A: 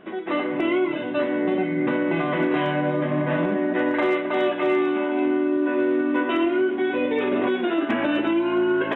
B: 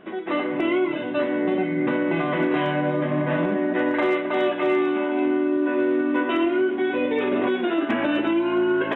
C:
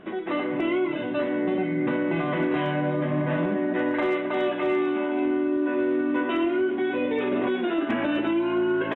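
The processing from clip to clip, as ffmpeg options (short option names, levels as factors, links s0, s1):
-af anull
-filter_complex "[0:a]lowshelf=f=130:g=8,asplit=2[s0][s1];[s1]alimiter=limit=0.0668:level=0:latency=1:release=60,volume=0.944[s2];[s0][s2]amix=inputs=2:normalize=0,aresample=22050,aresample=44100,volume=0.501"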